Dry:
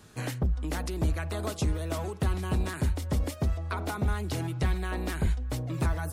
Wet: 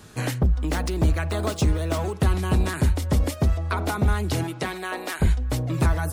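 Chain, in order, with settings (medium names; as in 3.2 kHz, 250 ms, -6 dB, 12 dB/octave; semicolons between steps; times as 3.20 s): 0.52–2.16 s: median filter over 3 samples; 4.43–5.20 s: high-pass 200 Hz -> 600 Hz 12 dB/octave; trim +7 dB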